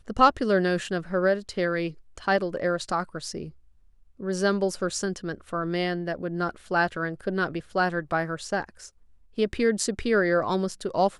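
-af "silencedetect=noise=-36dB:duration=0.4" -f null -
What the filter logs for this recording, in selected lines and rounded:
silence_start: 3.49
silence_end: 4.20 | silence_duration: 0.71
silence_start: 8.87
silence_end: 9.38 | silence_duration: 0.51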